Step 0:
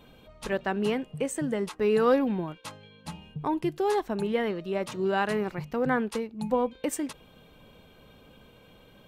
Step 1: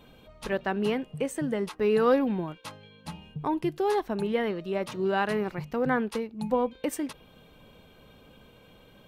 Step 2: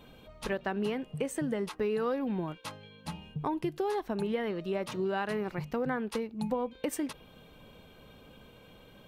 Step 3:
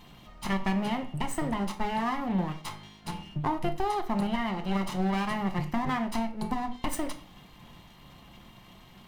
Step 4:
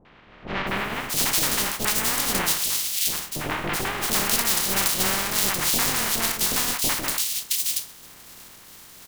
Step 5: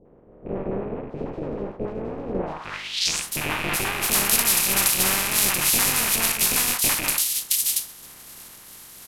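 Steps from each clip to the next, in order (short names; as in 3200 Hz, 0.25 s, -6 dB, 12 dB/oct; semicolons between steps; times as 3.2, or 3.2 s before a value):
dynamic EQ 7500 Hz, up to -6 dB, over -60 dBFS, Q 2.4
compressor 6:1, threshold -28 dBFS, peak gain reduction 10.5 dB
minimum comb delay 1 ms; reverb RT60 0.45 s, pre-delay 6 ms, DRR 6 dB; gain +3 dB
spectral contrast lowered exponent 0.18; three bands offset in time lows, mids, highs 50/670 ms, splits 690/2800 Hz; gain +6.5 dB
rattling part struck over -43 dBFS, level -17 dBFS; low-pass sweep 480 Hz -> 12000 Hz, 2.39–3.3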